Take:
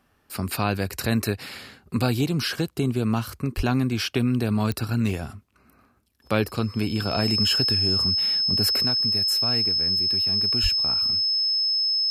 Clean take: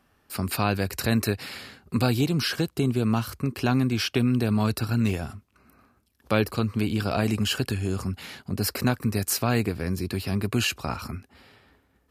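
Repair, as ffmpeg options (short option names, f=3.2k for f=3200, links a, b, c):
-filter_complex "[0:a]adeclick=t=4,bandreject=f=5.2k:w=30,asplit=3[a][b][c];[a]afade=t=out:st=3.56:d=0.02[d];[b]highpass=f=140:w=0.5412,highpass=f=140:w=1.3066,afade=t=in:st=3.56:d=0.02,afade=t=out:st=3.68:d=0.02[e];[c]afade=t=in:st=3.68:d=0.02[f];[d][e][f]amix=inputs=3:normalize=0,asplit=3[g][h][i];[g]afade=t=out:st=10.62:d=0.02[j];[h]highpass=f=140:w=0.5412,highpass=f=140:w=1.3066,afade=t=in:st=10.62:d=0.02,afade=t=out:st=10.74:d=0.02[k];[i]afade=t=in:st=10.74:d=0.02[l];[j][k][l]amix=inputs=3:normalize=0,asetnsamples=n=441:p=0,asendcmd='8.82 volume volume 7dB',volume=0dB"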